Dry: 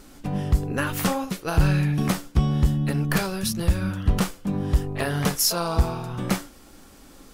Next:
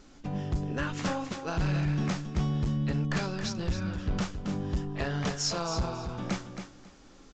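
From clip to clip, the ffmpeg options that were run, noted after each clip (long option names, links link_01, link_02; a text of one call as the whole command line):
ffmpeg -i in.wav -af "aresample=16000,volume=17.5dB,asoftclip=hard,volume=-17.5dB,aresample=44100,aecho=1:1:272|544|816:0.376|0.0752|0.015,volume=-6.5dB" out.wav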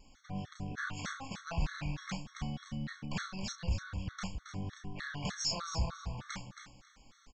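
ffmpeg -i in.wav -filter_complex "[0:a]equalizer=frequency=350:width=1:gain=-12.5,asplit=2[link_01][link_02];[link_02]adelay=31,volume=-6dB[link_03];[link_01][link_03]amix=inputs=2:normalize=0,afftfilt=real='re*gt(sin(2*PI*3.3*pts/sr)*(1-2*mod(floor(b*sr/1024/1100),2)),0)':imag='im*gt(sin(2*PI*3.3*pts/sr)*(1-2*mod(floor(b*sr/1024/1100),2)),0)':win_size=1024:overlap=0.75,volume=-2dB" out.wav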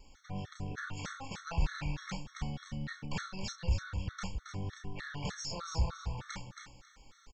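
ffmpeg -i in.wav -filter_complex "[0:a]acrossover=split=690[link_01][link_02];[link_02]alimiter=level_in=9.5dB:limit=-24dB:level=0:latency=1:release=293,volume=-9.5dB[link_03];[link_01][link_03]amix=inputs=2:normalize=0,aecho=1:1:2.2:0.37,volume=1dB" out.wav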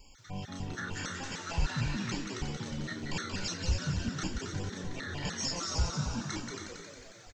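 ffmpeg -i in.wav -filter_complex "[0:a]highshelf=frequency=2700:gain=7.5,asplit=2[link_01][link_02];[link_02]asplit=8[link_03][link_04][link_05][link_06][link_07][link_08][link_09][link_10];[link_03]adelay=180,afreqshift=84,volume=-5dB[link_11];[link_04]adelay=360,afreqshift=168,volume=-9.4dB[link_12];[link_05]adelay=540,afreqshift=252,volume=-13.9dB[link_13];[link_06]adelay=720,afreqshift=336,volume=-18.3dB[link_14];[link_07]adelay=900,afreqshift=420,volume=-22.7dB[link_15];[link_08]adelay=1080,afreqshift=504,volume=-27.2dB[link_16];[link_09]adelay=1260,afreqshift=588,volume=-31.6dB[link_17];[link_10]adelay=1440,afreqshift=672,volume=-36.1dB[link_18];[link_11][link_12][link_13][link_14][link_15][link_16][link_17][link_18]amix=inputs=8:normalize=0[link_19];[link_01][link_19]amix=inputs=2:normalize=0" out.wav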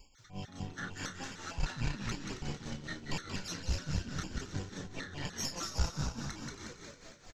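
ffmpeg -i in.wav -af "aeval=exprs='0.126*(cos(1*acos(clip(val(0)/0.126,-1,1)))-cos(1*PI/2))+0.0355*(cos(2*acos(clip(val(0)/0.126,-1,1)))-cos(2*PI/2))+0.00398*(cos(6*acos(clip(val(0)/0.126,-1,1)))-cos(6*PI/2))':channel_layout=same,aecho=1:1:237|474|711|948|1185|1422:0.266|0.144|0.0776|0.0419|0.0226|0.0122,tremolo=f=4.8:d=0.69,volume=-1.5dB" out.wav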